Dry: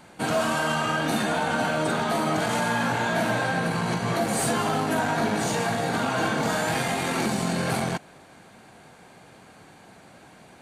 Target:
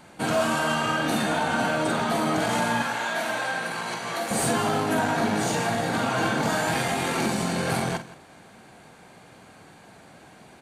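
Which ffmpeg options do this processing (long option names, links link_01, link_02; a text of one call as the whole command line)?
ffmpeg -i in.wav -filter_complex "[0:a]asettb=1/sr,asplit=3[link_01][link_02][link_03];[link_01]atrim=end=2.824[link_04];[link_02]atrim=start=2.82:end=4.31,asetpts=PTS-STARTPTS,afade=type=in:duration=0.004:curve=qsin,afade=type=out:start_time=1.486:duration=0.004:curve=qsin,highpass=frequency=850:poles=1[link_05];[link_03]atrim=start=4.306[link_06];[link_04][link_05]acrossfade=duration=0.004:curve1=hsin:curve2=qsin[link_07];[link_07][link_06]acrossfade=duration=0.004:curve1=qsin:curve2=hsin,asplit=2[link_08][link_09];[link_09]aecho=0:1:48|171:0.299|0.133[link_10];[link_08][link_10]amix=inputs=2:normalize=0" out.wav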